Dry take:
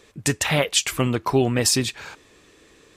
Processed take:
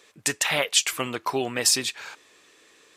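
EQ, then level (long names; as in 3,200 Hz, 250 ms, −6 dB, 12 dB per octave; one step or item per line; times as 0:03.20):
high-pass filter 810 Hz 6 dB per octave
0.0 dB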